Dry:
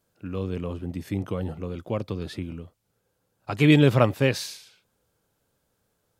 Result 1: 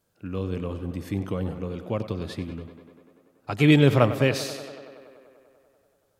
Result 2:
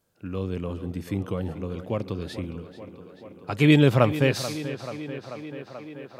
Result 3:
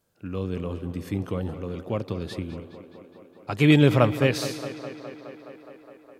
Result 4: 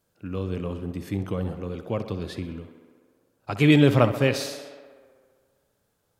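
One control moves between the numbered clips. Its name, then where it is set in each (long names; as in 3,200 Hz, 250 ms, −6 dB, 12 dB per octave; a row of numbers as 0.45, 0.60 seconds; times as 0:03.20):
tape delay, delay time: 96, 436, 208, 64 milliseconds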